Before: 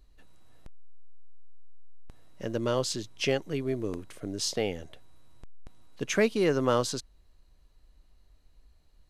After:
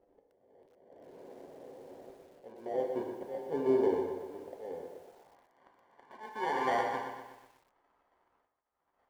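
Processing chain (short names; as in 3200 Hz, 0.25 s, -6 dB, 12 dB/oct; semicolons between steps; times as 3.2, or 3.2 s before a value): LPF 1900 Hz 12 dB/oct; low shelf 63 Hz -5 dB; notches 50/100/150/200/250/300/350/400 Hz; in parallel at +3 dB: limiter -23.5 dBFS, peak gain reduction 11 dB; on the sum: auto swell 0.507 s; modulation noise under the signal 12 dB; sample-and-hold 34×; band-pass sweep 500 Hz -> 1100 Hz, 4.88–5.41; on a send at -3 dB: reverb, pre-delay 3 ms; on the sum: lo-fi delay 0.122 s, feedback 55%, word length 10-bit, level -8 dB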